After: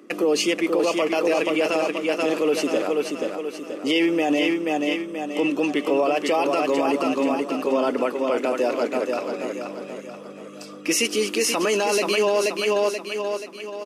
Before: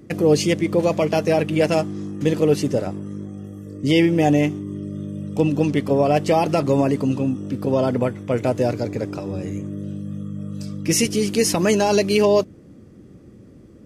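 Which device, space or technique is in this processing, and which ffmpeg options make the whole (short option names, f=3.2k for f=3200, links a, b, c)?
laptop speaker: -af "highpass=120,highpass=f=270:w=0.5412,highpass=f=270:w=1.3066,equalizer=f=1.2k:t=o:w=0.47:g=8,equalizer=f=2.7k:t=o:w=0.45:g=7.5,aecho=1:1:481|962|1443|1924|2405|2886:0.531|0.25|0.117|0.0551|0.0259|0.0122,alimiter=limit=-12.5dB:level=0:latency=1:release=29"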